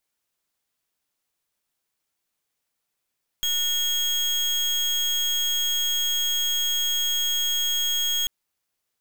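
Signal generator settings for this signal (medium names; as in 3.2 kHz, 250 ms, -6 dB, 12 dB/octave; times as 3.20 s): pulse 3.28 kHz, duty 33% -24 dBFS 4.84 s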